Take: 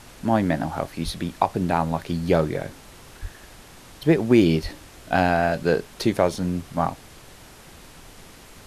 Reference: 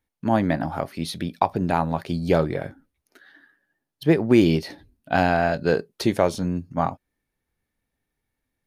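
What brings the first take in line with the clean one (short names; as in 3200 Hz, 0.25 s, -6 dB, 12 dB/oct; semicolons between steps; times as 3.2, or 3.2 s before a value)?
1.04–1.16 HPF 140 Hz 24 dB/oct; 3.21–3.33 HPF 140 Hz 24 dB/oct; 4.62–4.74 HPF 140 Hz 24 dB/oct; noise print and reduce 30 dB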